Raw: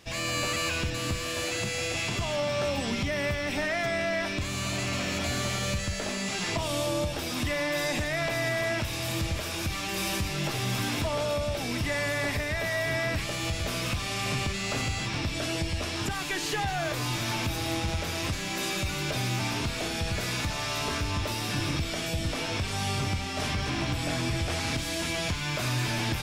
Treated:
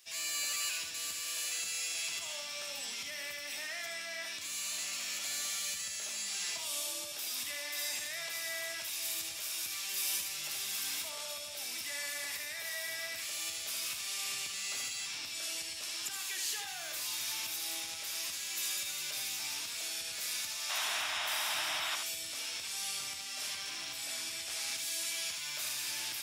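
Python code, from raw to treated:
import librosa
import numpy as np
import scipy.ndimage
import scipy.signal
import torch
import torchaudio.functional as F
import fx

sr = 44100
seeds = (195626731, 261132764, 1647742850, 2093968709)

p1 = np.diff(x, prepend=0.0)
p2 = fx.spec_paint(p1, sr, seeds[0], shape='noise', start_s=20.69, length_s=1.27, low_hz=600.0, high_hz=3900.0, level_db=-38.0)
y = p2 + fx.echo_single(p2, sr, ms=76, db=-6.0, dry=0)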